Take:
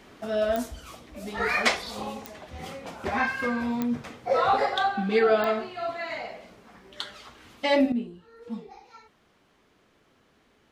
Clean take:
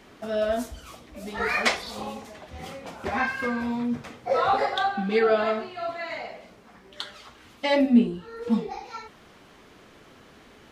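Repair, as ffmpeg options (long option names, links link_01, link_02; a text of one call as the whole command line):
ffmpeg -i in.wav -af "adeclick=threshold=4,asetnsamples=nb_out_samples=441:pad=0,asendcmd='7.92 volume volume 12dB',volume=0dB" out.wav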